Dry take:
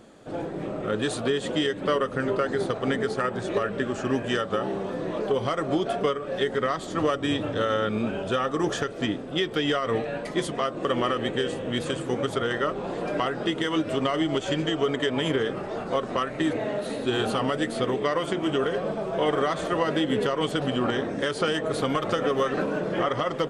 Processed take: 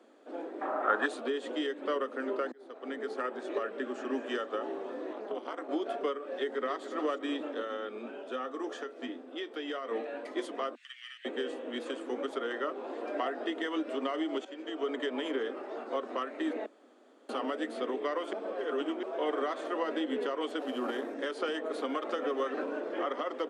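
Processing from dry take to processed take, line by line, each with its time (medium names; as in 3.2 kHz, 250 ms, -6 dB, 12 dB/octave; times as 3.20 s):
0.61–1.06 s: high-order bell 1.1 kHz +16 dB
2.52–3.19 s: fade in
3.71–4.14 s: echo throw 220 ms, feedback 60%, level -13 dB
5.13–5.69 s: AM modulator 220 Hz, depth 100%
6.33–6.89 s: echo throw 290 ms, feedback 40%, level -10.5 dB
7.60–9.91 s: feedback comb 85 Hz, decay 0.16 s
10.75–11.25 s: steep high-pass 1.8 kHz 48 dB/octave
13.14–13.69 s: small resonant body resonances 690/1800 Hz, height 9 dB
14.45–14.90 s: fade in, from -15.5 dB
16.66–17.29 s: room tone
18.33–19.03 s: reverse
20.59–21.14 s: CVSD coder 64 kbps
whole clip: steep high-pass 240 Hz 72 dB/octave; treble shelf 4.6 kHz -10.5 dB; trim -7.5 dB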